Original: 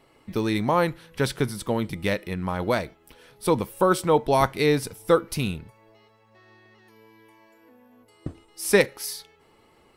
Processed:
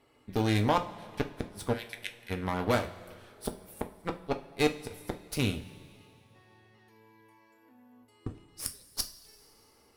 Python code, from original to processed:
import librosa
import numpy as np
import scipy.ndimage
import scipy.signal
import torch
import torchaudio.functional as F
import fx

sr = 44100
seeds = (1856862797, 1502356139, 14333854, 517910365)

y = fx.high_shelf_res(x, sr, hz=3100.0, db=13.5, q=3.0, at=(8.66, 9.12))
y = fx.gate_flip(y, sr, shuts_db=-11.0, range_db=-42)
y = fx.cheby_harmonics(y, sr, harmonics=(7, 8), levels_db=(-27, -19), full_scale_db=-8.5)
y = fx.brickwall_bandpass(y, sr, low_hz=1400.0, high_hz=14000.0, at=(1.72, 2.29), fade=0.02)
y = fx.rev_double_slope(y, sr, seeds[0], early_s=0.3, late_s=2.7, knee_db=-18, drr_db=4.5)
y = F.gain(torch.from_numpy(y), -4.5).numpy()